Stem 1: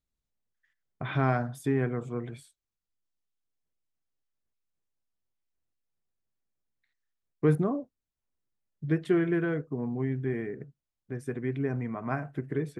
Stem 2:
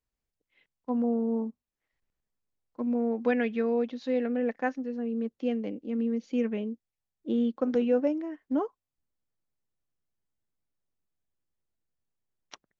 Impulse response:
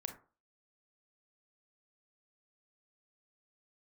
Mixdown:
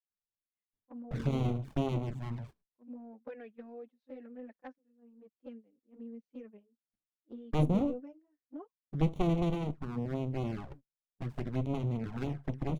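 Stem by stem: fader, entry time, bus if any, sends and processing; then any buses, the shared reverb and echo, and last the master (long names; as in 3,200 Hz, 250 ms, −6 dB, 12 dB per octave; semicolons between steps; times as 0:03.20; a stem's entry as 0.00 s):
+3.0 dB, 0.10 s, no send, windowed peak hold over 65 samples
−15.0 dB, 0.00 s, no send, high-shelf EQ 2,400 Hz −9 dB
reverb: not used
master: noise gate −44 dBFS, range −17 dB; low-shelf EQ 100 Hz −4 dB; flanger swept by the level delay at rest 9.9 ms, full sweep at −29.5 dBFS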